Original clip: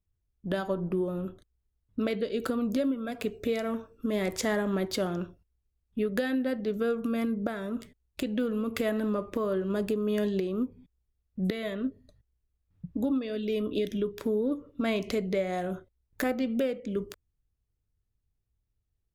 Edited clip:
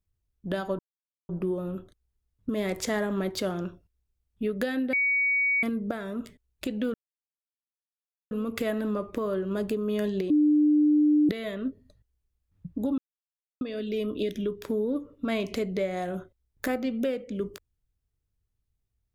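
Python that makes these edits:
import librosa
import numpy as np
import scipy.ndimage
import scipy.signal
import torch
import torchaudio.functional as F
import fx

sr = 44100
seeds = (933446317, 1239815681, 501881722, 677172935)

y = fx.edit(x, sr, fx.insert_silence(at_s=0.79, length_s=0.5),
    fx.cut(start_s=1.99, length_s=2.06),
    fx.bleep(start_s=6.49, length_s=0.7, hz=2250.0, db=-21.5),
    fx.insert_silence(at_s=8.5, length_s=1.37),
    fx.bleep(start_s=10.49, length_s=0.99, hz=299.0, db=-17.5),
    fx.insert_silence(at_s=13.17, length_s=0.63), tone=tone)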